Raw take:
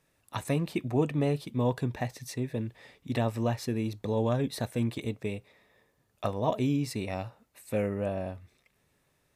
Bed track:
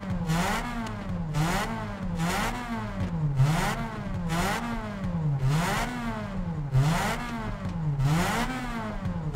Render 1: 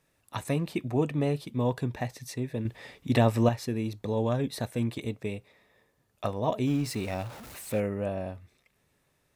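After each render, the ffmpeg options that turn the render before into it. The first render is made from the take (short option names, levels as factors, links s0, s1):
-filter_complex "[0:a]asettb=1/sr,asplit=3[s0][s1][s2];[s0]atrim=end=2.654[s3];[s1]atrim=start=2.65:end=3.49,asetpts=PTS-STARTPTS,afade=t=in:d=0.004:c=qsin,afade=t=out:st=0.836:d=0.004:c=qsin,acontrast=65[s4];[s2]atrim=start=3.486[s5];[s3][s4]acrossfade=d=0.004:c1=hsin:c2=qsin[s6];[s6][s5]acrossfade=d=0.004:c1=qsin:c2=hsin,asettb=1/sr,asplit=3[s7][s8][s9];[s7]atrim=end=6.674[s10];[s8]atrim=start=6.67:end=7.8,asetpts=PTS-STARTPTS,afade=t=in:d=0.004:c=qsin,afade=t=out:st=1.126:d=0.004:c=qsin,aeval=exprs='val(0)+0.5*0.01*sgn(val(0))':c=same[s11];[s9]atrim=start=7.796[s12];[s10][s11]acrossfade=d=0.004:c1=hsin:c2=qsin[s13];[s13][s12]acrossfade=d=0.004:c1=qsin:c2=hsin"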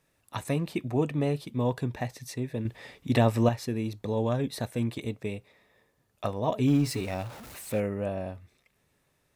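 -filter_complex "[0:a]asettb=1/sr,asplit=3[s0][s1][s2];[s0]atrim=end=6.584[s3];[s1]atrim=start=6.58:end=7.01,asetpts=PTS-STARTPTS,afade=t=in:d=0.004:c=qsin,afade=t=out:st=0.426:d=0.004:c=qsin,aecho=1:1:7.1:0.65,atrim=end_sample=18963[s4];[s2]atrim=start=7.006[s5];[s3][s4]acrossfade=d=0.004:c1=hsin:c2=qsin[s6];[s6][s5]acrossfade=d=0.004:c1=qsin:c2=hsin"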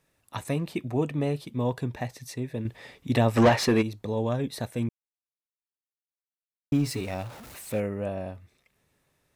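-filter_complex "[0:a]asplit=3[s0][s1][s2];[s0]afade=t=out:st=3.36:d=0.02[s3];[s1]asplit=2[s4][s5];[s5]highpass=f=720:p=1,volume=22.4,asoftclip=type=tanh:threshold=0.335[s6];[s4][s6]amix=inputs=2:normalize=0,lowpass=f=2600:p=1,volume=0.501,afade=t=in:st=3.36:d=0.02,afade=t=out:st=3.81:d=0.02[s7];[s2]afade=t=in:st=3.81:d=0.02[s8];[s3][s7][s8]amix=inputs=3:normalize=0,asplit=3[s9][s10][s11];[s9]atrim=end=4.89,asetpts=PTS-STARTPTS,afade=t=out:st=4.886:d=0.004:c=hsin[s12];[s10]atrim=start=4.89:end=6.72,asetpts=PTS-STARTPTS,volume=0[s13];[s11]atrim=start=6.72,asetpts=PTS-STARTPTS,afade=t=in:d=0.004:c=hsin[s14];[s12][s13][s14]concat=n=3:v=0:a=1"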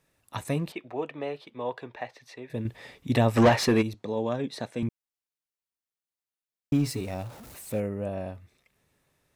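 -filter_complex "[0:a]asettb=1/sr,asplit=3[s0][s1][s2];[s0]atrim=end=0.724[s3];[s1]atrim=start=0.72:end=2.5,asetpts=PTS-STARTPTS,afade=t=in:d=0.004:c=qsin,afade=t=out:st=1.776:d=0.004:c=qsin,acrossover=split=380 4200:gain=0.1 1 0.0891[s4][s5][s6];[s4][s5][s6]amix=inputs=3:normalize=0[s7];[s2]atrim=start=2.496[s8];[s3][s7]acrossfade=d=0.004:c1=hsin:c2=qsin[s9];[s9][s8]acrossfade=d=0.004:c1=qsin:c2=hsin,asettb=1/sr,asplit=3[s10][s11][s12];[s10]atrim=end=3.944[s13];[s11]atrim=start=3.94:end=4.83,asetpts=PTS-STARTPTS,afade=t=in:d=0.004:c=qsin,afade=t=out:st=0.886:d=0.004:c=qsin,highpass=180,lowpass=6700[s14];[s12]atrim=start=4.826[s15];[s13][s14]acrossfade=d=0.004:c1=hsin:c2=qsin[s16];[s16][s15]acrossfade=d=0.004:c1=qsin:c2=hsin,asettb=1/sr,asplit=3[s17][s18][s19];[s17]atrim=end=6.914[s20];[s18]atrim=start=6.91:end=8.13,asetpts=PTS-STARTPTS,afade=t=in:d=0.004:c=qsin,afade=t=out:st=1.216:d=0.004:c=qsin,equalizer=f=2100:w=0.45:g=-5[s21];[s19]atrim=start=8.126[s22];[s20][s21]acrossfade=d=0.004:c1=hsin:c2=qsin[s23];[s23][s22]acrossfade=d=0.004:c1=qsin:c2=hsin"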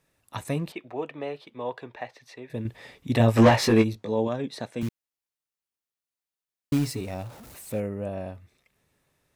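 -filter_complex "[0:a]asettb=1/sr,asplit=3[s0][s1][s2];[s0]atrim=end=3.184[s3];[s1]atrim=start=3.18:end=4.28,asetpts=PTS-STARTPTS,afade=t=in:d=0.004:c=qsin,afade=t=out:st=1.096:d=0.004:c=qsin,asplit=2[s4][s5];[s5]adelay=18,volume=0.708[s6];[s4][s6]amix=inputs=2:normalize=0,atrim=end_sample=48510[s7];[s2]atrim=start=4.276[s8];[s3][s7]acrossfade=d=0.004:c1=hsin:c2=qsin[s9];[s9][s8]acrossfade=d=0.004:c1=qsin:c2=hsin,asettb=1/sr,asplit=3[s10][s11][s12];[s10]atrim=end=4.814[s13];[s11]atrim=start=4.81:end=6.91,asetpts=PTS-STARTPTS,afade=t=in:d=0.004:c=qsin,afade=t=out:st=2.096:d=0.004:c=qsin,acrusher=bits=4:mode=log:mix=0:aa=0.000001[s14];[s12]atrim=start=6.906[s15];[s13][s14]acrossfade=d=0.004:c1=hsin:c2=qsin[s16];[s16][s15]acrossfade=d=0.004:c1=qsin:c2=hsin"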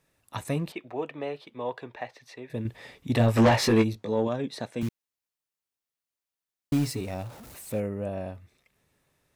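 -af "asoftclip=type=tanh:threshold=0.224"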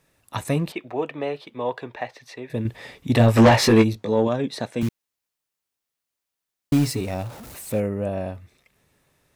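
-af "volume=2"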